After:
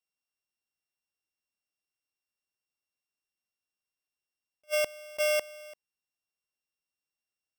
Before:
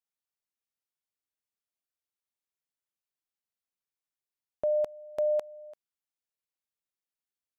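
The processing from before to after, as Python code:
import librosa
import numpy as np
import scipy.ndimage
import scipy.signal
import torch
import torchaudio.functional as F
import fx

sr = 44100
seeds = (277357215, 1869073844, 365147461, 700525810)

y = np.r_[np.sort(x[:len(x) // 16 * 16].reshape(-1, 16), axis=1).ravel(), x[len(x) // 16 * 16:]]
y = fx.attack_slew(y, sr, db_per_s=580.0)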